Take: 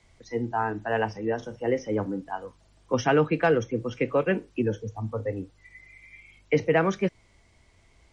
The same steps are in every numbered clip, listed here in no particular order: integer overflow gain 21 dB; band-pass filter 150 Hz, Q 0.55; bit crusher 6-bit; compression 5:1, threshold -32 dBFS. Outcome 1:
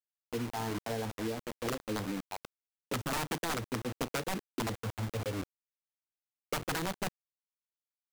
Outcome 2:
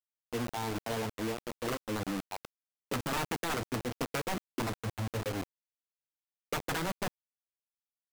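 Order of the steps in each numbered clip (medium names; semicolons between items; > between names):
band-pass filter > integer overflow > bit crusher > compression; band-pass filter > integer overflow > compression > bit crusher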